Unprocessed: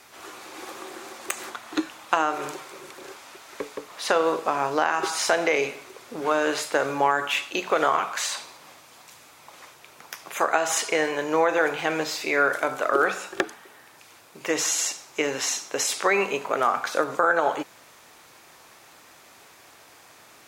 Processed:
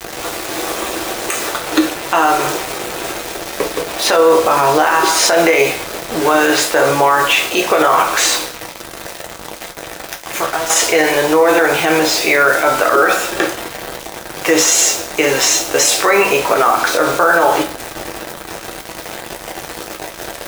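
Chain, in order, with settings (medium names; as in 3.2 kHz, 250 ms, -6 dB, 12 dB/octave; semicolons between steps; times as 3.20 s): band noise 270–800 Hz -42 dBFS; 8.47–10.70 s: compression 2:1, threshold -39 dBFS, peak gain reduction 12.5 dB; bit crusher 6-bit; on a send at -2 dB: reverberation, pre-delay 3 ms; on the sum: loudness maximiser +13.5 dB; trim -1 dB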